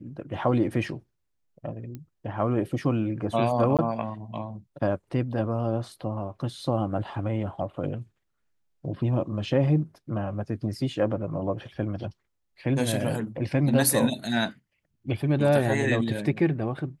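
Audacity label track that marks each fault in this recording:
1.950000	1.950000	click −25 dBFS
3.770000	3.790000	drop-out 17 ms

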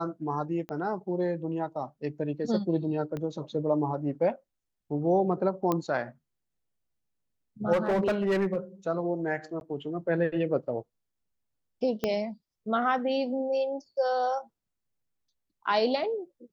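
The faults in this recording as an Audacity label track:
0.690000	0.690000	click −25 dBFS
3.170000	3.170000	click −23 dBFS
5.720000	5.720000	click −14 dBFS
7.720000	8.560000	clipping −21.5 dBFS
9.600000	9.610000	drop-out 11 ms
12.040000	12.040000	click −14 dBFS

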